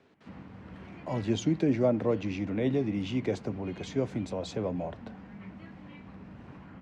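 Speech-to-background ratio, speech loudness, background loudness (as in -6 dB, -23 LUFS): 16.5 dB, -31.0 LUFS, -47.5 LUFS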